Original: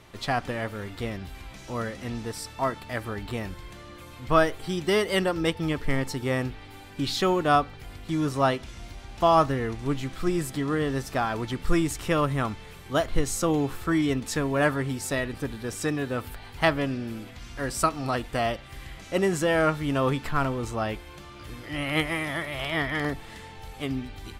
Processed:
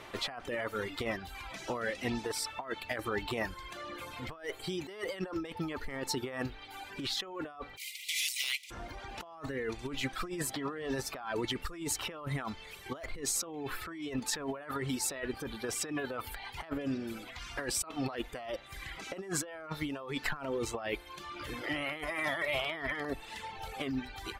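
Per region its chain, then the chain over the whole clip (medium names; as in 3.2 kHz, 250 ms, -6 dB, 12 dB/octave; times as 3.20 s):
7.76–8.70 s: spectral contrast reduction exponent 0.52 + Chebyshev high-pass 2 kHz, order 8 + overload inside the chain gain 23.5 dB
whole clip: reverb removal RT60 1.1 s; tone controls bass -12 dB, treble -6 dB; compressor with a negative ratio -38 dBFS, ratio -1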